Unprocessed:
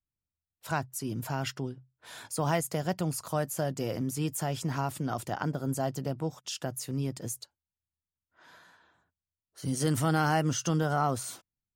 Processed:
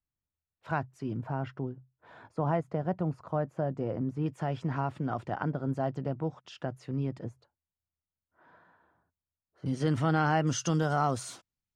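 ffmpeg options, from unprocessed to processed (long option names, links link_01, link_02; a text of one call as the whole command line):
ffmpeg -i in.wav -af "asetnsamples=nb_out_samples=441:pad=0,asendcmd='1.17 lowpass f 1200;4.26 lowpass f 2100;7.24 lowpass f 1200;9.66 lowpass f 3100;10.47 lowpass f 7600',lowpass=2100" out.wav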